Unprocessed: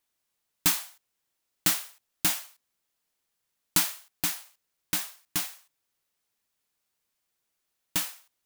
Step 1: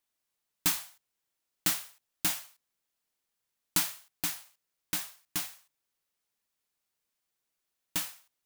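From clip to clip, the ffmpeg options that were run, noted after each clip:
-af "bandreject=f=50:t=h:w=6,bandreject=f=100:t=h:w=6,bandreject=f=150:t=h:w=6,volume=0.631"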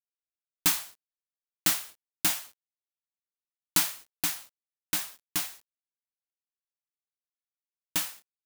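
-af "acrusher=bits=8:mix=0:aa=0.000001,bass=f=250:g=-3,treble=f=4000:g=0,volume=1.5"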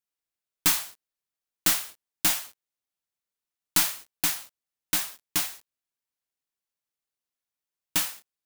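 -af "aeval=exprs='(tanh(7.94*val(0)+0.2)-tanh(0.2))/7.94':c=same,volume=1.78"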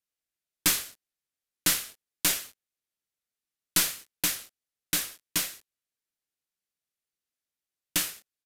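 -filter_complex "[0:a]acrossover=split=980[s0][s1];[s0]acrusher=samples=34:mix=1:aa=0.000001[s2];[s2][s1]amix=inputs=2:normalize=0,aresample=32000,aresample=44100"

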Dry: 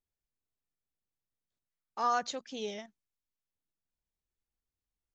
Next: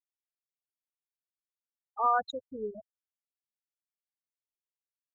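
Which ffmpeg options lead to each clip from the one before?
-af "afftfilt=real='re*gte(hypot(re,im),0.0562)':imag='im*gte(hypot(re,im),0.0562)':win_size=1024:overlap=0.75,lowshelf=f=150:t=q:w=1.5:g=12.5,volume=1.58"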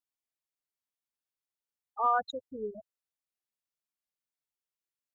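-af "acontrast=48,volume=0.473"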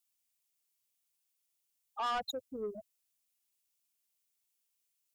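-filter_complex "[0:a]acrossover=split=140[s0][s1];[s1]aexciter=amount=1.3:drive=9.4:freq=2300[s2];[s0][s2]amix=inputs=2:normalize=0,asoftclip=type=tanh:threshold=0.0282"

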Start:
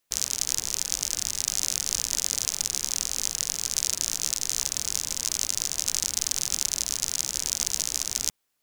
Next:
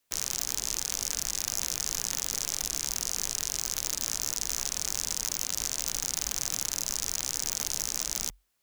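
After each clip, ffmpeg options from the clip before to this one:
-af "afreqshift=-47,aeval=exprs='0.266*(abs(mod(val(0)/0.266+3,4)-2)-1)':c=same"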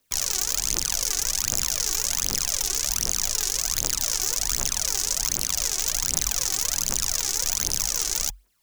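-af "aphaser=in_gain=1:out_gain=1:delay=2.8:decay=0.65:speed=1.3:type=triangular,volume=1.58"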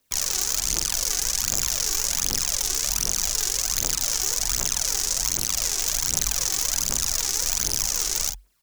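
-filter_complex "[0:a]asplit=2[s0][s1];[s1]adelay=45,volume=0.447[s2];[s0][s2]amix=inputs=2:normalize=0"

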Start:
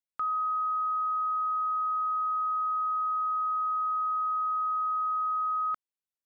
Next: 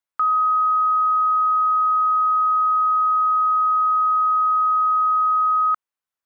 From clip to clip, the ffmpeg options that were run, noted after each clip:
-af "equalizer=f=1200:w=0.77:g=9.5,volume=1.19"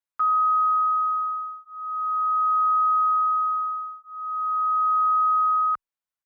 -filter_complex "[0:a]asplit=2[s0][s1];[s1]adelay=7.3,afreqshift=-0.42[s2];[s0][s2]amix=inputs=2:normalize=1,volume=0.794"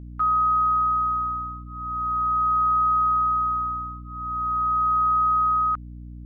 -af "aeval=exprs='val(0)+0.0141*(sin(2*PI*60*n/s)+sin(2*PI*2*60*n/s)/2+sin(2*PI*3*60*n/s)/3+sin(2*PI*4*60*n/s)/4+sin(2*PI*5*60*n/s)/5)':c=same"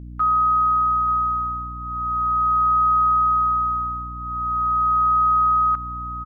-af "aecho=1:1:882:0.211,volume=1.33"

